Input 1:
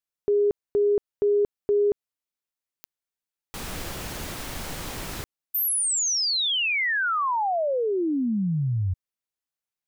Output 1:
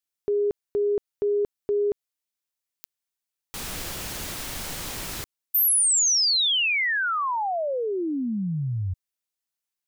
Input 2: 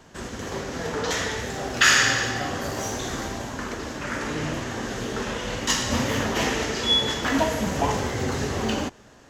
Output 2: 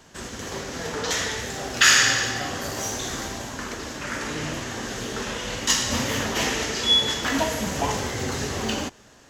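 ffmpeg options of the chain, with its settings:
-af "highshelf=f=2.3k:g=7,volume=-2.5dB"

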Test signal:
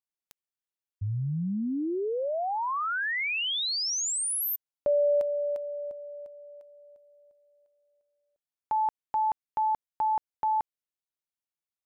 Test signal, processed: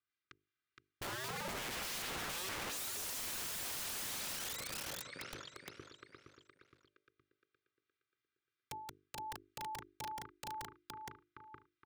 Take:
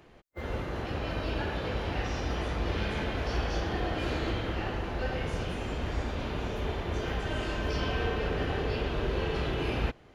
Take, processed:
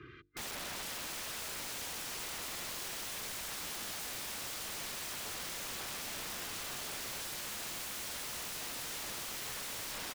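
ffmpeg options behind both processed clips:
-filter_complex "[0:a]asuperstop=centerf=660:order=8:qfactor=0.91,aecho=1:1:2.5:0.78,acrossover=split=1600[a][b];[a]aeval=exprs='val(0)*(1-0.5/2+0.5/2*cos(2*PI*3.1*n/s))':c=same[c];[b]aeval=exprs='val(0)*(1-0.5/2-0.5/2*cos(2*PI*3.1*n/s))':c=same[d];[c][d]amix=inputs=2:normalize=0,aeval=exprs='(mod(26.6*val(0)+1,2)-1)/26.6':c=same,highpass=110,equalizer=f=120:t=q:w=4:g=4,equalizer=f=530:t=q:w=4:g=8,equalizer=f=800:t=q:w=4:g=-9,equalizer=f=1.4k:t=q:w=4:g=8,equalizer=f=2.2k:t=q:w=4:g=4,equalizer=f=3.7k:t=q:w=4:g=3,lowpass=f=6.2k:w=0.5412,lowpass=f=6.2k:w=1.3066,acompressor=threshold=-35dB:ratio=8:attack=0.53:release=32:knee=1:detection=rms,bass=f=250:g=5,treble=f=4k:g=-12,bandreject=f=50:t=h:w=6,bandreject=f=100:t=h:w=6,bandreject=f=150:t=h:w=6,bandreject=f=200:t=h:w=6,bandreject=f=250:t=h:w=6,bandreject=f=300:t=h:w=6,bandreject=f=350:t=h:w=6,bandreject=f=400:t=h:w=6,bandreject=f=450:t=h:w=6,asplit=2[e][f];[f]aecho=0:1:467|934|1401|1868|2335:0.708|0.283|0.113|0.0453|0.0181[g];[e][g]amix=inputs=2:normalize=0,aeval=exprs='(mod(133*val(0)+1,2)-1)/133':c=same,volume=5.5dB"

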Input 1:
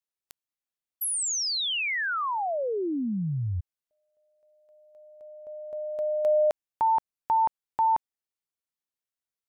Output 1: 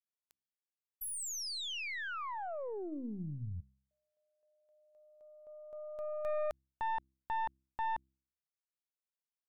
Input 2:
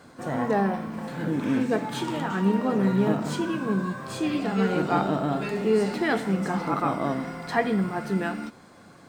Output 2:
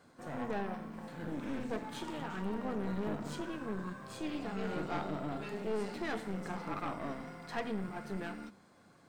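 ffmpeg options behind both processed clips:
-af "aeval=exprs='(tanh(12.6*val(0)+0.65)-tanh(0.65))/12.6':c=same,bandreject=f=65.87:t=h:w=4,bandreject=f=131.74:t=h:w=4,bandreject=f=197.61:t=h:w=4,bandreject=f=263.48:t=h:w=4,bandreject=f=329.35:t=h:w=4,volume=-8.5dB"

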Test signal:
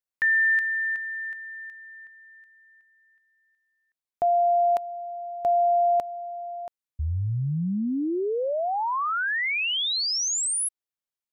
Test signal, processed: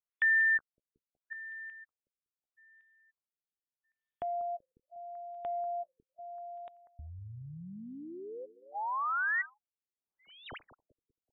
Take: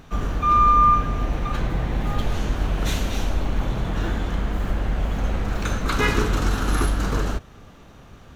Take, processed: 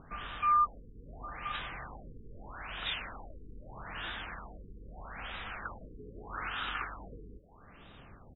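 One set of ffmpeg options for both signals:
-filter_complex "[0:a]highshelf=f=6.4k:g=9,acrossover=split=840[a][b];[a]acompressor=threshold=-36dB:ratio=8:attack=6.3:release=580:knee=6:detection=peak[c];[c][b]amix=inputs=2:normalize=0,crystalizer=i=4:c=0,asoftclip=type=tanh:threshold=-9.5dB,aecho=1:1:192|384|576|768:0.2|0.0778|0.0303|0.0118,afftfilt=real='re*lt(b*sr/1024,470*pow(3900/470,0.5+0.5*sin(2*PI*0.79*pts/sr)))':imag='im*lt(b*sr/1024,470*pow(3900/470,0.5+0.5*sin(2*PI*0.79*pts/sr)))':win_size=1024:overlap=0.75,volume=-8dB"

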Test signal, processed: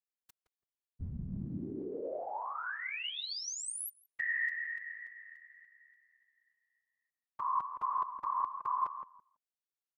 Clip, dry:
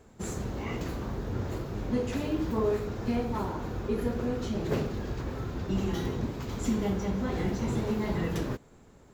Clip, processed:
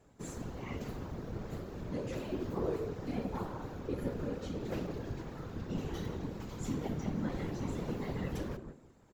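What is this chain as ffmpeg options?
-filter_complex "[0:a]asplit=2[a][b];[b]adelay=166,lowpass=f=1k:p=1,volume=-6.5dB,asplit=2[c][d];[d]adelay=166,lowpass=f=1k:p=1,volume=0.22,asplit=2[e][f];[f]adelay=166,lowpass=f=1k:p=1,volume=0.22[g];[a][c][e][g]amix=inputs=4:normalize=0,afftfilt=real='hypot(re,im)*cos(2*PI*random(0))':imag='hypot(re,im)*sin(2*PI*random(1))':win_size=512:overlap=0.75,volume=-2dB"

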